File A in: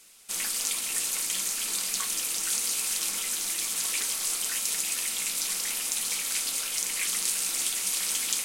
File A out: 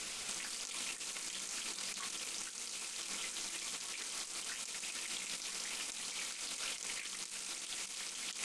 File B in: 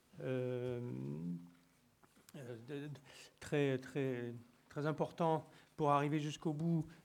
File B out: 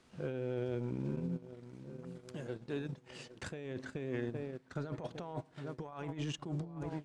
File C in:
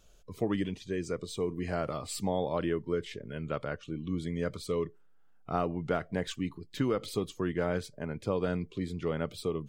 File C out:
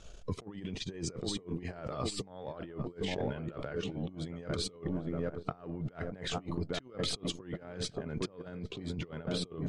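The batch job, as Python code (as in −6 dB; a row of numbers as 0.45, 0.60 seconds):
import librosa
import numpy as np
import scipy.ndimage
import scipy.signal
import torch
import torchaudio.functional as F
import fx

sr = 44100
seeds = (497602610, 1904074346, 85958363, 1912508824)

p1 = x + fx.echo_filtered(x, sr, ms=810, feedback_pct=59, hz=1300.0, wet_db=-13, dry=0)
p2 = fx.over_compress(p1, sr, threshold_db=-42.0, ratio=-1.0)
p3 = fx.transient(p2, sr, attack_db=1, sustain_db=-11)
p4 = np.clip(10.0 ** (35.5 / 20.0) * p3, -1.0, 1.0) / 10.0 ** (35.5 / 20.0)
p5 = p3 + (p4 * librosa.db_to_amplitude(-12.0))
p6 = scipy.signal.sosfilt(scipy.signal.bessel(8, 6600.0, 'lowpass', norm='mag', fs=sr, output='sos'), p5)
y = p6 * librosa.db_to_amplitude(1.5)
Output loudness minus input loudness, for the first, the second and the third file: −13.5, −2.0, −4.5 LU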